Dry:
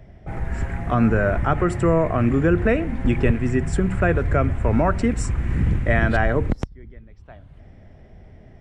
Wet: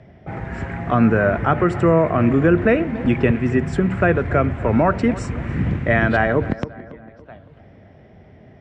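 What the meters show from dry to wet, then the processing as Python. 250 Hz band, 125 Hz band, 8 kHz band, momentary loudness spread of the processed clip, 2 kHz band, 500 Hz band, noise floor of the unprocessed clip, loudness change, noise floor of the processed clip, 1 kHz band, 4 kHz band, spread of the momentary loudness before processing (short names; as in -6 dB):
+3.5 dB, +0.5 dB, n/a, 12 LU, +3.5 dB, +3.5 dB, -47 dBFS, +2.5 dB, -47 dBFS, +3.5 dB, +2.0 dB, 9 LU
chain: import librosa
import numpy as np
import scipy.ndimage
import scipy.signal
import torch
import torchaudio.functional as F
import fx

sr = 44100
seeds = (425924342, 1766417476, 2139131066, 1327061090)

y = fx.bandpass_edges(x, sr, low_hz=110.0, high_hz=4500.0)
y = fx.echo_tape(y, sr, ms=281, feedback_pct=55, wet_db=-15.5, lp_hz=2000.0, drive_db=7.0, wow_cents=6)
y = F.gain(torch.from_numpy(y), 3.5).numpy()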